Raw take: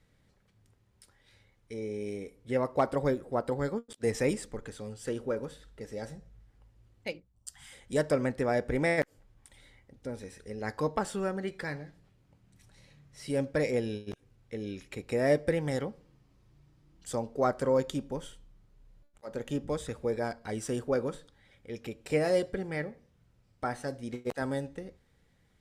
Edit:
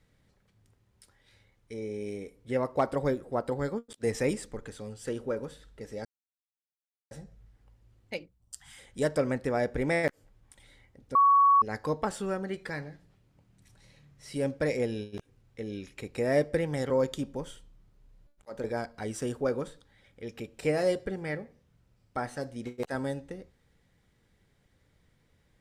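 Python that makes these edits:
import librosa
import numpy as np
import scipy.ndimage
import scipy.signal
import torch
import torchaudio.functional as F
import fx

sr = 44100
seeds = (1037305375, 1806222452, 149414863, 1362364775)

y = fx.edit(x, sr, fx.insert_silence(at_s=6.05, length_s=1.06),
    fx.bleep(start_s=10.09, length_s=0.47, hz=1120.0, db=-17.0),
    fx.cut(start_s=15.84, length_s=1.82),
    fx.cut(start_s=19.4, length_s=0.71), tone=tone)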